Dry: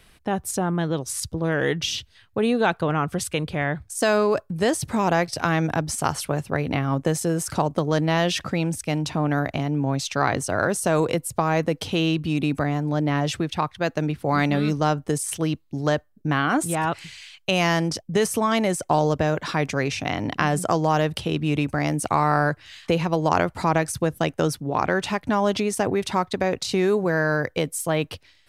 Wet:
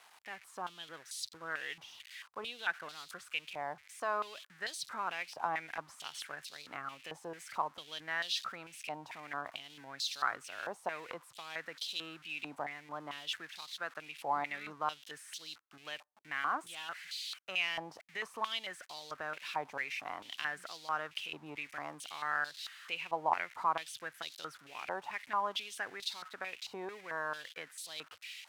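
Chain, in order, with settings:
spike at every zero crossing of −20.5 dBFS
band-pass on a step sequencer 4.5 Hz 880–4,000 Hz
level −4 dB

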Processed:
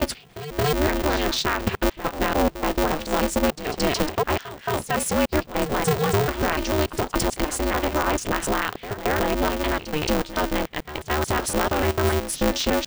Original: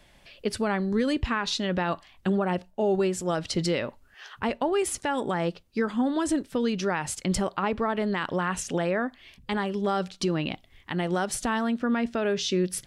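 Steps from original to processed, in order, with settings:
slices reordered back to front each 146 ms, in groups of 4
backwards echo 223 ms −12.5 dB
ring modulator with a square carrier 150 Hz
level +4 dB

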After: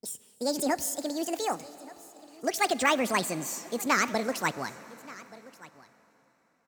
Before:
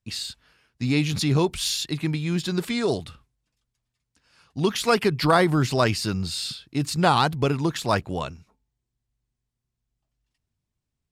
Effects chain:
gliding playback speed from 200% → 133%
low-shelf EQ 160 Hz −9 dB
on a send: single-tap delay 1,179 ms −20.5 dB
on the sum: dense smooth reverb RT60 4.3 s, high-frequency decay 0.9×, DRR 15.5 dB
level −5 dB

